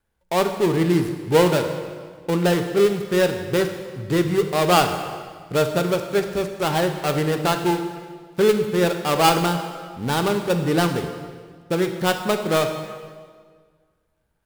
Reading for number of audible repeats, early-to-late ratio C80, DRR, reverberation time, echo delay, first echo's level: no echo, 9.0 dB, 6.0 dB, 1.7 s, no echo, no echo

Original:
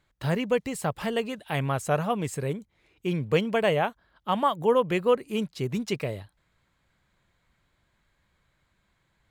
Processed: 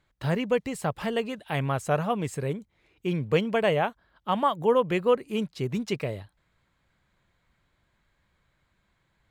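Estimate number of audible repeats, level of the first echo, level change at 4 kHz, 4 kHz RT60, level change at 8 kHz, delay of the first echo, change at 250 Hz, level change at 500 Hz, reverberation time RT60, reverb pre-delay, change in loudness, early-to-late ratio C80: no echo, no echo, -1.0 dB, no reverb, no reading, no echo, 0.0 dB, 0.0 dB, no reverb, no reverb, 0.0 dB, no reverb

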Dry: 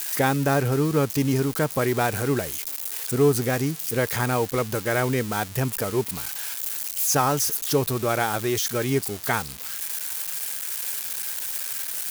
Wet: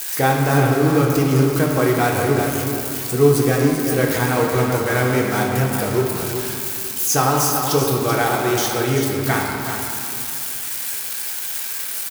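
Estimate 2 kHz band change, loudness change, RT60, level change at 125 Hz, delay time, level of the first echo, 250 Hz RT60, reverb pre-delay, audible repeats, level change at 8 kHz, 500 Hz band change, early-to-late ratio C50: +6.0 dB, +5.5 dB, 2.4 s, +6.5 dB, 385 ms, -8.0 dB, 3.0 s, 3 ms, 1, +3.5 dB, +6.0 dB, 0.5 dB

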